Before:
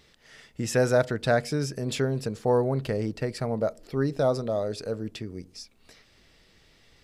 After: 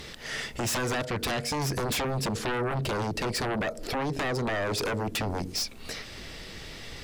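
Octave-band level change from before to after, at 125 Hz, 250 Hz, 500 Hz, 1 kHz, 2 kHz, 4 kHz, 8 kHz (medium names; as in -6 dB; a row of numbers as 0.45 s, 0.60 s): -2.5 dB, -2.5 dB, -6.0 dB, +2.0 dB, +3.5 dB, +7.0 dB, +5.5 dB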